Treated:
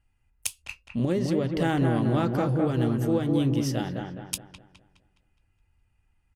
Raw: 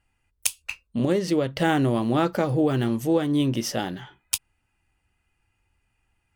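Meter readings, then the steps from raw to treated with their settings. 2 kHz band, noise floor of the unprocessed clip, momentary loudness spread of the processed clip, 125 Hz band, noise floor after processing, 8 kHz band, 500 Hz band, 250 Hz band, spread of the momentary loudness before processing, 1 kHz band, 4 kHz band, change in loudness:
−5.0 dB, −74 dBFS, 11 LU, +1.5 dB, −70 dBFS, −6.0 dB, −3.0 dB, −1.5 dB, 8 LU, −4.0 dB, −5.5 dB, −2.0 dB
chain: low-shelf EQ 160 Hz +10.5 dB
delay with a low-pass on its return 208 ms, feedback 41%, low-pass 2,100 Hz, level −4 dB
downsampling to 32,000 Hz
level −6 dB

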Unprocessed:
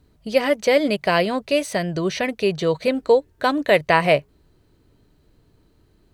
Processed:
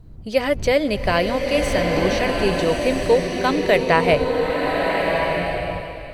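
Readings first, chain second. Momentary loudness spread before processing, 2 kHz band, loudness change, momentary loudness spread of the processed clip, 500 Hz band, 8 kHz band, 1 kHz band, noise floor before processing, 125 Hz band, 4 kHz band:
6 LU, +2.0 dB, +0.5 dB, 6 LU, +1.5 dB, +2.0 dB, +2.0 dB, −60 dBFS, +3.5 dB, +1.5 dB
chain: wind on the microphone 93 Hz −34 dBFS
slow-attack reverb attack 1,350 ms, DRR 0.5 dB
level −1 dB

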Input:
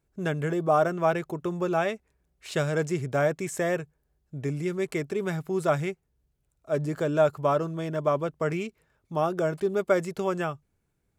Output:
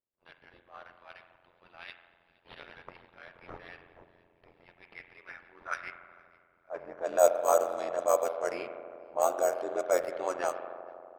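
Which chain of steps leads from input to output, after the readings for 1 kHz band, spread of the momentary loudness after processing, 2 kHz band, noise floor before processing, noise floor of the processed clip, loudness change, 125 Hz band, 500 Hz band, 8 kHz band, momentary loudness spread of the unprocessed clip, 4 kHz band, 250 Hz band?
−4.0 dB, 23 LU, −8.0 dB, −75 dBFS, −69 dBFS, −2.0 dB, below −30 dB, −4.5 dB, +2.5 dB, 10 LU, −8.5 dB, −18.0 dB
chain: high-shelf EQ 4,000 Hz +9 dB
transient designer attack −9 dB, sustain −5 dB
high-pass filter sweep 3,100 Hz → 610 Hz, 0:04.70–0:07.26
high-frequency loss of the air 94 metres
on a send: delay with a high-pass on its return 474 ms, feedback 51%, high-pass 2,800 Hz, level −12.5 dB
on the sum: bad sample-rate conversion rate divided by 6×, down none, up hold
spring reverb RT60 2.5 s, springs 40 ms, chirp 75 ms, DRR 7 dB
amplitude modulation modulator 87 Hz, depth 85%
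low-pass that shuts in the quiet parts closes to 530 Hz, open at −24.5 dBFS
one half of a high-frequency compander encoder only

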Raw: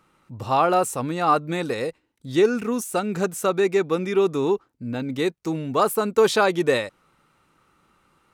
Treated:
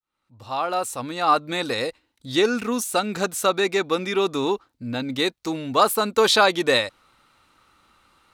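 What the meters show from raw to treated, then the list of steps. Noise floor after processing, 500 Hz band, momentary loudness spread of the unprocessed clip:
−76 dBFS, −2.0 dB, 9 LU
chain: fade in at the beginning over 1.72 s
graphic EQ with 15 bands 160 Hz −10 dB, 400 Hz −6 dB, 4,000 Hz +7 dB
level +3.5 dB

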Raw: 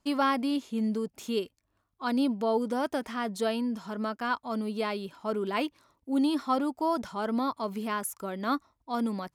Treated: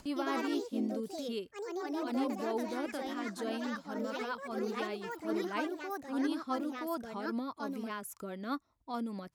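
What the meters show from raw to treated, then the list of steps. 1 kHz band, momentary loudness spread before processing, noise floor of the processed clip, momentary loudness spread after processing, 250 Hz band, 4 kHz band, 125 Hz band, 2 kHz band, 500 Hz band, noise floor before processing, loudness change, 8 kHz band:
−8.0 dB, 7 LU, −63 dBFS, 6 LU, −6.0 dB, −6.5 dB, can't be measured, −4.5 dB, −5.5 dB, −77 dBFS, −6.5 dB, −7.0 dB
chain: rotating-speaker cabinet horn 5 Hz
delay with pitch and tempo change per echo 110 ms, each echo +3 semitones, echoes 3
upward compression, threshold −30 dBFS
level −6.5 dB

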